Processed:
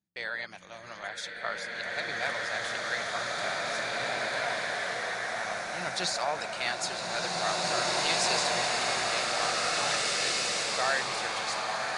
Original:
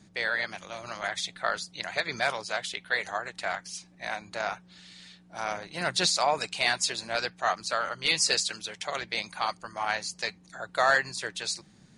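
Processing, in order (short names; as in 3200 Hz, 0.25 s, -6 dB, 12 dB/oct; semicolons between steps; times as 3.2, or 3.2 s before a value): gate -46 dBFS, range -26 dB; bloom reverb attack 2.19 s, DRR -6.5 dB; gain -6.5 dB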